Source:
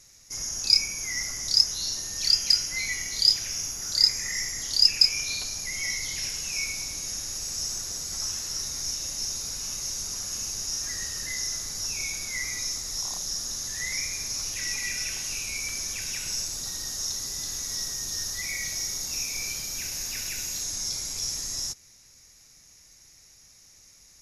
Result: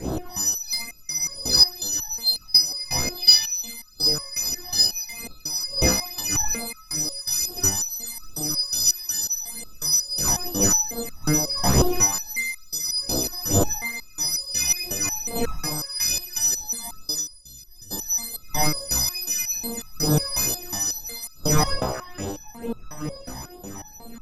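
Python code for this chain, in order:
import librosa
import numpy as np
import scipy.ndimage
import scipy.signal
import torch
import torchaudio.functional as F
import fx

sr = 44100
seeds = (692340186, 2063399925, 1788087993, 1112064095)

p1 = fx.freq_snap(x, sr, grid_st=3)
p2 = fx.dmg_wind(p1, sr, seeds[0], corner_hz=580.0, level_db=-26.0)
p3 = fx.vibrato(p2, sr, rate_hz=5.7, depth_cents=9.1)
p4 = p3 + fx.echo_stepped(p3, sr, ms=152, hz=790.0, octaves=0.7, feedback_pct=70, wet_db=-8, dry=0)
p5 = fx.rider(p4, sr, range_db=4, speed_s=2.0)
p6 = fx.tone_stack(p5, sr, knobs='10-0-1', at=(17.19, 17.9), fade=0.02)
p7 = fx.phaser_stages(p6, sr, stages=12, low_hz=420.0, high_hz=2200.0, hz=2.3, feedback_pct=35)
p8 = fx.peak_eq(p7, sr, hz=3100.0, db=13.5, octaves=0.69, at=(3.17, 3.72))
p9 = fx.rev_double_slope(p8, sr, seeds[1], early_s=0.54, late_s=1.9, knee_db=-26, drr_db=10.5)
p10 = 10.0 ** (-2.5 / 20.0) * np.tanh(p9 / 10.0 ** (-2.5 / 20.0))
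p11 = fx.level_steps(p10, sr, step_db=10)
p12 = p10 + (p11 * librosa.db_to_amplitude(1.0))
p13 = fx.resonator_held(p12, sr, hz=5.5, low_hz=64.0, high_hz=1300.0)
y = p13 * librosa.db_to_amplitude(4.0)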